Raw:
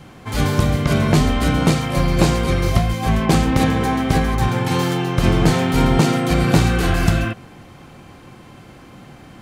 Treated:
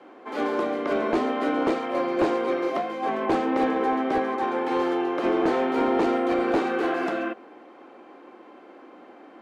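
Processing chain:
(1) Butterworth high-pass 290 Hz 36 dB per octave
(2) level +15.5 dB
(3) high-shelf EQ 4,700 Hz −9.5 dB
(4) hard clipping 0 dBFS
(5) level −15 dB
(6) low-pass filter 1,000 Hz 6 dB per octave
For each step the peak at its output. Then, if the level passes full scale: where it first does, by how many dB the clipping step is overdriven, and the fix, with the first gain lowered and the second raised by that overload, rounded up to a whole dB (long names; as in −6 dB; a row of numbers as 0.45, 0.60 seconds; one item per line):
−5.0, +10.5, +9.5, 0.0, −15.0, −15.0 dBFS
step 2, 9.5 dB
step 2 +5.5 dB, step 5 −5 dB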